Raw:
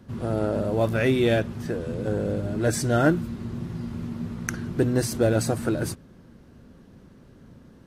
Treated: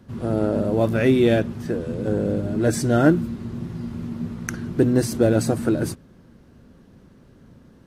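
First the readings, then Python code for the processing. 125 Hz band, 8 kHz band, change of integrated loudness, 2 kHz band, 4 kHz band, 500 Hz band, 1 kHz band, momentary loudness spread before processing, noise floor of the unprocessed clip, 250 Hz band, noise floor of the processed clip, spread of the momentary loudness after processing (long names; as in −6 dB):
+2.5 dB, 0.0 dB, +3.5 dB, +0.5 dB, 0.0 dB, +3.0 dB, +1.0 dB, 12 LU, −51 dBFS, +5.0 dB, −51 dBFS, 13 LU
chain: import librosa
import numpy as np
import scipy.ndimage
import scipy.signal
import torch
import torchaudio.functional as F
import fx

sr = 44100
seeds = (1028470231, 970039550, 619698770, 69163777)

y = fx.dynamic_eq(x, sr, hz=260.0, q=0.75, threshold_db=-33.0, ratio=4.0, max_db=6)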